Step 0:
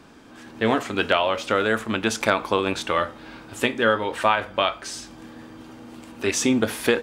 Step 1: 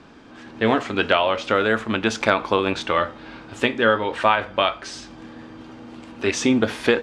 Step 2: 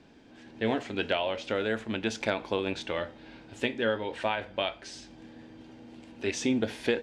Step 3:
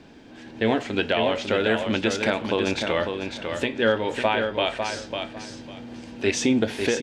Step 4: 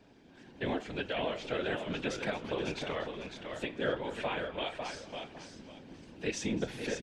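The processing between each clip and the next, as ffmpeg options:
ffmpeg -i in.wav -af "lowpass=5200,volume=2dB" out.wav
ffmpeg -i in.wav -af "equalizer=frequency=1200:width=2.9:gain=-12,volume=-8.5dB" out.wav
ffmpeg -i in.wav -filter_complex "[0:a]alimiter=limit=-17dB:level=0:latency=1:release=239,asplit=2[link_01][link_02];[link_02]aecho=0:1:550|1100|1650:0.501|0.105|0.0221[link_03];[link_01][link_03]amix=inputs=2:normalize=0,volume=8dB" out.wav
ffmpeg -i in.wav -filter_complex "[0:a]afftfilt=real='hypot(re,im)*cos(2*PI*random(0))':imag='hypot(re,im)*sin(2*PI*random(1))':win_size=512:overlap=0.75,asplit=5[link_01][link_02][link_03][link_04][link_05];[link_02]adelay=240,afreqshift=-87,volume=-17dB[link_06];[link_03]adelay=480,afreqshift=-174,volume=-23.4dB[link_07];[link_04]adelay=720,afreqshift=-261,volume=-29.8dB[link_08];[link_05]adelay=960,afreqshift=-348,volume=-36.1dB[link_09];[link_01][link_06][link_07][link_08][link_09]amix=inputs=5:normalize=0,volume=-6dB" out.wav

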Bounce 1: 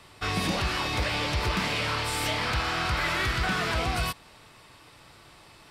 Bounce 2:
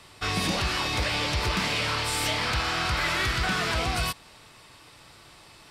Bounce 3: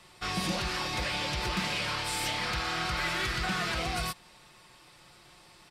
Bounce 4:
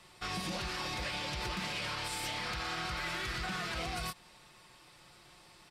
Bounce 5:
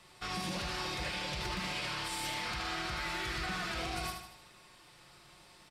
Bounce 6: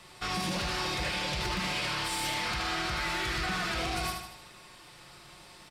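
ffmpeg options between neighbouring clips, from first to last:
ffmpeg -i in.wav -af "equalizer=frequency=6600:width=0.51:gain=4" out.wav
ffmpeg -i in.wav -af "aecho=1:1:5.6:0.49,volume=-5.5dB" out.wav
ffmpeg -i in.wav -af "alimiter=level_in=2dB:limit=-24dB:level=0:latency=1:release=74,volume=-2dB,volume=-2.5dB" out.wav
ffmpeg -i in.wav -af "aecho=1:1:76|152|228|304|380|456:0.501|0.251|0.125|0.0626|0.0313|0.0157,volume=-1dB" out.wav
ffmpeg -i in.wav -af "asoftclip=type=tanh:threshold=-30.5dB,volume=6.5dB" out.wav

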